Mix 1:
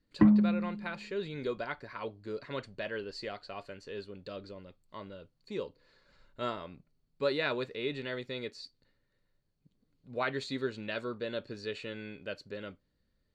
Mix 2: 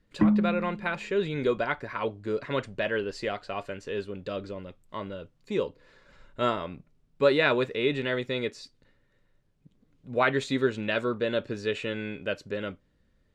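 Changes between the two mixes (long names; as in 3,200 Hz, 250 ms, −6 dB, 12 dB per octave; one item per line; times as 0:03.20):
speech +9.0 dB
master: add parametric band 4,400 Hz −13.5 dB 0.21 octaves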